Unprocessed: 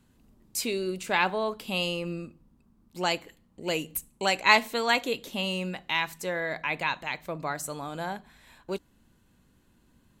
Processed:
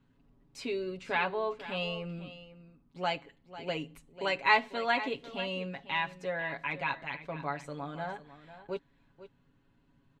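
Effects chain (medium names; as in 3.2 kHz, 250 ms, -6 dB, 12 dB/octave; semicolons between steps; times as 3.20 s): low-pass 3.1 kHz 12 dB/octave; comb 7.2 ms, depth 76%; delay 496 ms -14.5 dB; trim -6 dB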